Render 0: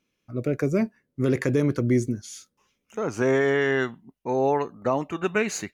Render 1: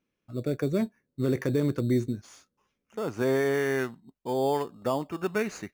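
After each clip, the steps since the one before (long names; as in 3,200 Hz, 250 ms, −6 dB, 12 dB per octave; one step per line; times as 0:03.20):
high-shelf EQ 5,300 Hz −10 dB
in parallel at −6 dB: decimation without filtering 11×
on the sum: level −7 dB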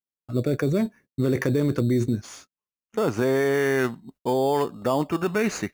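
in parallel at +2 dB: compressor whose output falls as the input rises −31 dBFS, ratio −1
on the sum: noise gate −48 dBFS, range −36 dB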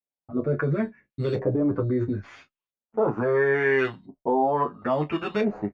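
auto-filter low-pass saw up 0.74 Hz 600–3,700 Hz
on a send: ambience of single reflections 20 ms −11.5 dB, 34 ms −16.5 dB
on the sum: barber-pole flanger 8.2 ms −0.47 Hz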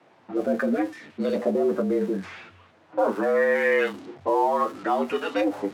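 converter with a step at zero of −38.5 dBFS
low-pass that shuts in the quiet parts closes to 1,400 Hz, open at −22 dBFS
frequency shifter +90 Hz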